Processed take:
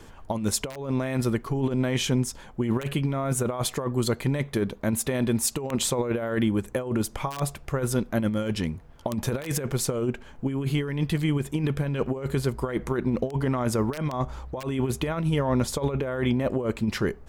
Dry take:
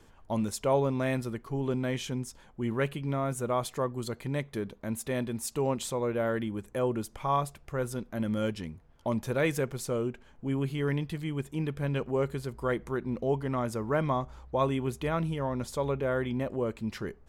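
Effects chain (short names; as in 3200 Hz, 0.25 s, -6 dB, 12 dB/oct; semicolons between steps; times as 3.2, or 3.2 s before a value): wrapped overs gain 17.5 dB; negative-ratio compressor -32 dBFS, ratio -0.5; gain +7.5 dB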